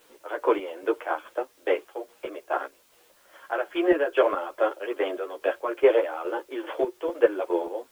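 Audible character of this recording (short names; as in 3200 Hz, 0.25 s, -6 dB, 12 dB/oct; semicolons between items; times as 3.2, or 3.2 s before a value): chopped level 2.4 Hz, depth 60%, duty 40%; a quantiser's noise floor 10-bit, dither triangular; a shimmering, thickened sound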